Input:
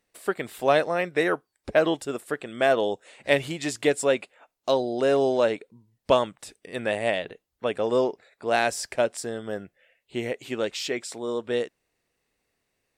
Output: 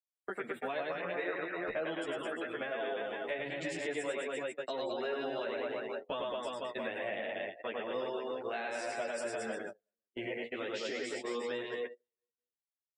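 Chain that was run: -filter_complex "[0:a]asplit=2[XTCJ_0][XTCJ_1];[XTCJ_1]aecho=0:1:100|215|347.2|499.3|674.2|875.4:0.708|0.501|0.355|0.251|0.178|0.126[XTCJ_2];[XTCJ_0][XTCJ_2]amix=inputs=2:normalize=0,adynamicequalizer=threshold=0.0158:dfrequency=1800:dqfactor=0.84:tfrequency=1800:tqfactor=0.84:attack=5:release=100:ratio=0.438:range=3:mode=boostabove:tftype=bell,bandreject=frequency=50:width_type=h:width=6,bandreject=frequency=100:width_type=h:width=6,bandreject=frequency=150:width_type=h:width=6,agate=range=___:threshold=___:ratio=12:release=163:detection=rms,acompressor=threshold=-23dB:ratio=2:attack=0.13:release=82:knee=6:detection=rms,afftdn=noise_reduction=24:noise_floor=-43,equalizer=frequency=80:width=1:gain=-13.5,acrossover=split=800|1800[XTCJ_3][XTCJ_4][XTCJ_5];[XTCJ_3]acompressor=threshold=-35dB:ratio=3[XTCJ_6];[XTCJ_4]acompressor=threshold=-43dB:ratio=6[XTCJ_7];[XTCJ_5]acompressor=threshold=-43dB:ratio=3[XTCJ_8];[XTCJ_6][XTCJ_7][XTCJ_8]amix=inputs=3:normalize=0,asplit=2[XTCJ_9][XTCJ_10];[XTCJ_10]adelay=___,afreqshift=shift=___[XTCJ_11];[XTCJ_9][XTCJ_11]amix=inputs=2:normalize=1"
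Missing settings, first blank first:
-30dB, -27dB, 10.6, 2.2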